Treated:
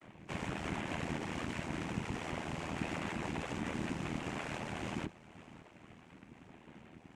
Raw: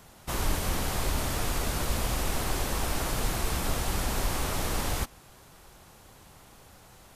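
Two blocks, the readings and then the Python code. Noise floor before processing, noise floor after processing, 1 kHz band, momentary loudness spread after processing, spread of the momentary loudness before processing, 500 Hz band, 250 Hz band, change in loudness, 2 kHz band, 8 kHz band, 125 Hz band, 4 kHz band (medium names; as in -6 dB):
-54 dBFS, -59 dBFS, -8.5 dB, 18 LU, 1 LU, -7.5 dB, -2.5 dB, -9.0 dB, -6.0 dB, -19.0 dB, -9.0 dB, -12.5 dB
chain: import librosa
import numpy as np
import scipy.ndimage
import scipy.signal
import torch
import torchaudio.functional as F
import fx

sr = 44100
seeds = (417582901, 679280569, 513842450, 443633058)

p1 = fx.chord_vocoder(x, sr, chord='bare fifth', root=48)
p2 = fx.dereverb_blind(p1, sr, rt60_s=0.6)
p3 = scipy.signal.sosfilt(scipy.signal.butter(2, 180.0, 'highpass', fs=sr, output='sos'), p2)
p4 = fx.high_shelf(p3, sr, hz=2900.0, db=-9.5)
p5 = fx.over_compress(p4, sr, threshold_db=-41.0, ratio=-1.0)
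p6 = p4 + (p5 * librosa.db_to_amplitude(-3.0))
p7 = 10.0 ** (-32.5 / 20.0) * (np.abs((p6 / 10.0 ** (-32.5 / 20.0) + 3.0) % 4.0 - 2.0) - 1.0)
p8 = fx.fixed_phaser(p7, sr, hz=2300.0, stages=8)
p9 = fx.noise_vocoder(p8, sr, seeds[0], bands=4)
p10 = p9 * np.sin(2.0 * np.pi * 40.0 * np.arange(len(p9)) / sr)
p11 = fx.echo_feedback(p10, sr, ms=550, feedback_pct=48, wet_db=-19.0)
y = p11 * librosa.db_to_amplitude(5.0)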